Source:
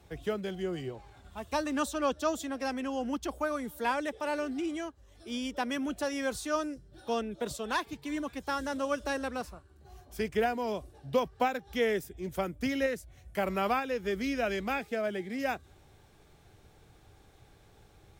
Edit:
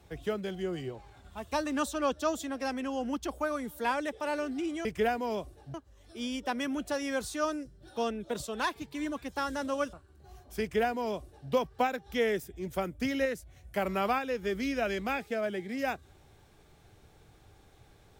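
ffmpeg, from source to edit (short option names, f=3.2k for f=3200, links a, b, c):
-filter_complex "[0:a]asplit=4[a][b][c][d];[a]atrim=end=4.852[e];[b]atrim=start=10.218:end=11.112[f];[c]atrim=start=4.848:end=9.042[g];[d]atrim=start=9.538[h];[e][f]acrossfade=d=0.004:c1=hsin:c2=hsin[i];[i][g]acrossfade=d=0.004:c1=hsin:c2=hsin[j];[j][h]acrossfade=d=0.004:c1=hsin:c2=hsin"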